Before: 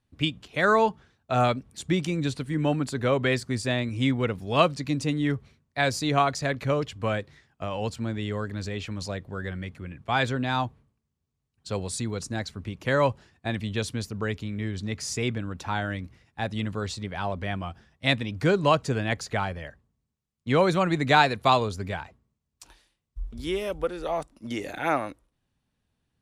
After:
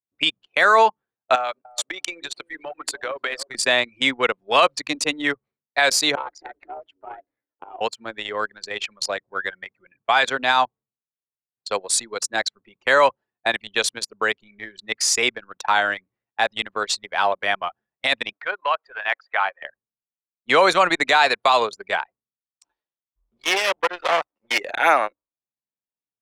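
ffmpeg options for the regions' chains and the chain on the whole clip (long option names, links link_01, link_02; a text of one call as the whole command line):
ffmpeg -i in.wav -filter_complex "[0:a]asettb=1/sr,asplit=3[link_01][link_02][link_03];[link_01]atrim=end=1.354[link_04];[link_02]atrim=start=1.35:end=3.55,asetpts=PTS-STARTPTS,afade=type=in:duration=0.004:curve=qsin,afade=type=out:start_time=2.196:duration=0.004:curve=qsin,highpass=350,acompressor=threshold=-31dB:ratio=20:attack=3.2:release=140:knee=1:detection=peak,asplit=2[link_05][link_06];[link_06]adelay=299,lowpass=frequency=1000:poles=1,volume=-8dB,asplit=2[link_07][link_08];[link_08]adelay=299,lowpass=frequency=1000:poles=1,volume=0.36,asplit=2[link_09][link_10];[link_10]adelay=299,lowpass=frequency=1000:poles=1,volume=0.36,asplit=2[link_11][link_12];[link_12]adelay=299,lowpass=frequency=1000:poles=1,volume=0.36[link_13];[link_05][link_07][link_09][link_11][link_13]amix=inputs=5:normalize=0,atrim=end_sample=97020[link_14];[link_03]atrim=start=3.546[link_15];[link_04][link_14]acrossfade=duration=0.004:curve1=hsin:curve2=qsin[link_16];[link_16][link_15]acrossfade=duration=0.004:curve1=qsin:curve2=hsin,asettb=1/sr,asplit=3[link_17][link_18][link_19];[link_17]atrim=end=6.154[link_20];[link_18]atrim=start=6.15:end=7.81,asetpts=PTS-STARTPTS,afade=type=in:duration=0.004:curve=qsin,afade=type=out:start_time=1.656:duration=0.004:curve=qsin,highshelf=frequency=2000:gain=-7.5,acompressor=threshold=-32dB:ratio=4:attack=3.2:release=140:knee=1:detection=peak,aeval=exprs='val(0)*sin(2*PI*180*n/s)':channel_layout=same[link_21];[link_19]atrim=start=7.806[link_22];[link_20][link_21]acrossfade=duration=0.004:curve1=hsin:curve2=qsin[link_23];[link_23][link_22]acrossfade=duration=0.004:curve1=qsin:curve2=hsin,asettb=1/sr,asplit=3[link_24][link_25][link_26];[link_24]atrim=end=18.324[link_27];[link_25]atrim=start=18.32:end=19.62,asetpts=PTS-STARTPTS,afade=type=in:duration=0.004:curve=qsin,afade=type=out:start_time=1.296:duration=0.004:curve=qsin,acompressor=threshold=-23dB:ratio=12:attack=3.2:release=140:knee=1:detection=peak,asoftclip=type=hard:threshold=-18.5dB,highpass=740,lowpass=2600[link_28];[link_26]atrim=start=19.616[link_29];[link_27][link_28]acrossfade=duration=0.004:curve1=hsin:curve2=qsin[link_30];[link_30][link_29]acrossfade=duration=0.004:curve1=qsin:curve2=hsin,asettb=1/sr,asplit=3[link_31][link_32][link_33];[link_31]atrim=end=23.364[link_34];[link_32]atrim=start=23.36:end=24.58,asetpts=PTS-STARTPTS,afade=type=in:duration=0.004:curve=qsin,afade=type=out:start_time=1.216:duration=0.004:curve=qsin,equalizer=frequency=2200:width_type=o:width=1.9:gain=11,aecho=1:1:5.5:0.36,atrim=end_sample=53802,aeval=exprs='max(val(0),0)':channel_layout=same[link_35];[link_33]atrim=start=24.576[link_36];[link_34][link_35]acrossfade=duration=0.004:curve1=hsin:curve2=qsin[link_37];[link_37][link_36]acrossfade=duration=0.004:curve1=qsin:curve2=hsin,highpass=690,anlmdn=1.58,alimiter=level_in=18.5dB:limit=-1dB:release=50:level=0:latency=1,volume=-5dB" out.wav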